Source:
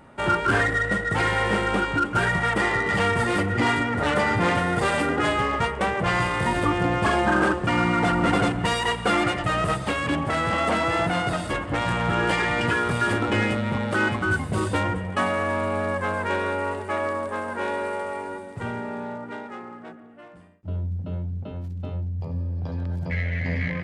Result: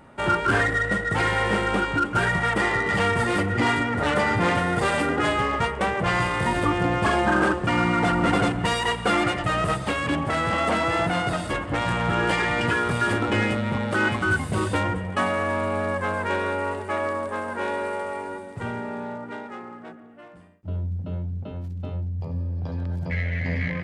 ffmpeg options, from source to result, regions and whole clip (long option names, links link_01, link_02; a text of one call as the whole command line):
ffmpeg -i in.wav -filter_complex "[0:a]asettb=1/sr,asplit=3[link_01][link_02][link_03];[link_01]atrim=end=14.054[link_04];[link_02]atrim=start=14.05:end=14.75,asetpts=PTS-STARTPTS,afade=type=in:duration=0.004:curve=qsin,afade=type=out:start_time=0.696:duration=0.004:curve=qsin,acrossover=split=3400[link_05][link_06];[link_06]acompressor=threshold=-49dB:ratio=4:attack=1:release=60[link_07];[link_05][link_07]amix=inputs=2:normalize=0,highshelf=frequency=3300:gain=10[link_08];[link_03]atrim=start=14.746[link_09];[link_04][link_08]acrossfade=duration=0.004:curve1=hsin:curve2=qsin[link_10];[link_10][link_09]acrossfade=duration=0.004:curve1=qsin:curve2=hsin" out.wav